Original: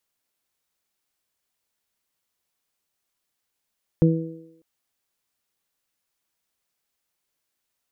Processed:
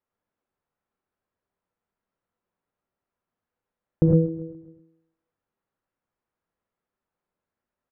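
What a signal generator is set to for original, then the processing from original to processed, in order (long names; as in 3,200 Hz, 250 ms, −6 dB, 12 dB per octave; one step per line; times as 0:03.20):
harmonic partials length 0.60 s, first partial 163 Hz, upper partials −5/−9.5 dB, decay 0.64 s, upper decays 0.86/0.87 s, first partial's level −12 dB
low-pass filter 1,200 Hz 12 dB per octave
repeating echo 132 ms, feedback 53%, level −17.5 dB
reverb whose tail is shaped and stops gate 130 ms rising, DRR 0 dB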